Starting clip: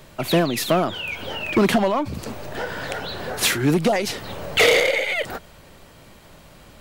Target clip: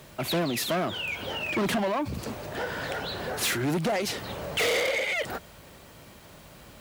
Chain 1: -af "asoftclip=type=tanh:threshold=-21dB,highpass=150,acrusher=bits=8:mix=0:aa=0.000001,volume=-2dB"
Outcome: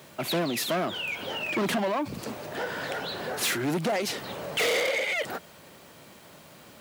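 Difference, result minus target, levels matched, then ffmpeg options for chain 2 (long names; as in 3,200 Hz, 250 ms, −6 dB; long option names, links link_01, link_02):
125 Hz band −3.0 dB
-af "asoftclip=type=tanh:threshold=-21dB,highpass=43,acrusher=bits=8:mix=0:aa=0.000001,volume=-2dB"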